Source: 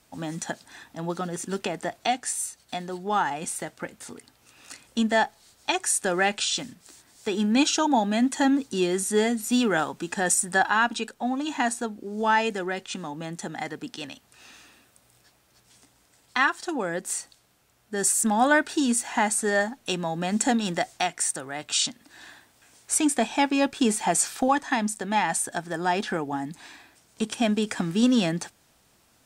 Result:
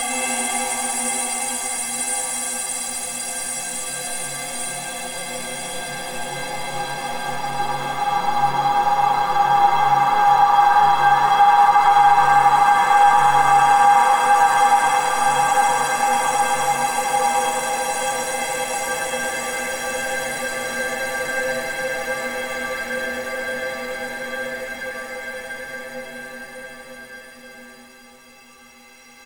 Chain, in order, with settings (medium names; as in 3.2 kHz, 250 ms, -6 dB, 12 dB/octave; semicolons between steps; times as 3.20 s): jump at every zero crossing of -29 dBFS; gate with hold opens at -22 dBFS; low-pass 3 kHz 6 dB/octave; peaking EQ 220 Hz -15 dB 1.3 oct; inharmonic resonator 240 Hz, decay 0.29 s, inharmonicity 0.03; Paulstretch 14×, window 1.00 s, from 2.30 s; frequency-shifting echo 105 ms, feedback 35%, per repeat +140 Hz, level -10 dB; loudness maximiser +28 dB; trim -4 dB